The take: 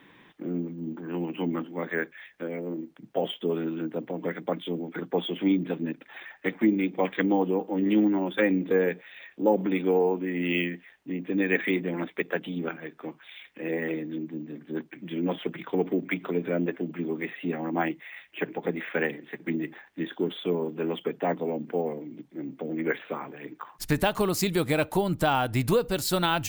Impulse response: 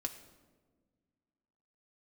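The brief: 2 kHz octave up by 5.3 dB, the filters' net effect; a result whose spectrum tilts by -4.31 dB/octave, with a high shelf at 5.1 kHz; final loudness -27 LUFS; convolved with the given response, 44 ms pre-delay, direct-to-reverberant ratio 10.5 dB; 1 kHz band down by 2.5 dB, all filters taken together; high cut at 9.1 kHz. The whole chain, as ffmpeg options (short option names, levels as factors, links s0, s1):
-filter_complex "[0:a]lowpass=9100,equalizer=f=1000:t=o:g=-5.5,equalizer=f=2000:t=o:g=9,highshelf=f=5100:g=-7.5,asplit=2[s0][s1];[1:a]atrim=start_sample=2205,adelay=44[s2];[s1][s2]afir=irnorm=-1:irlink=0,volume=0.316[s3];[s0][s3]amix=inputs=2:normalize=0,volume=1.12"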